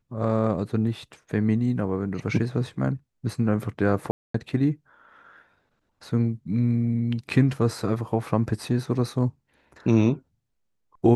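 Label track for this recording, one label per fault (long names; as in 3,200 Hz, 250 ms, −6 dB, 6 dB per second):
4.110000	4.340000	drop-out 234 ms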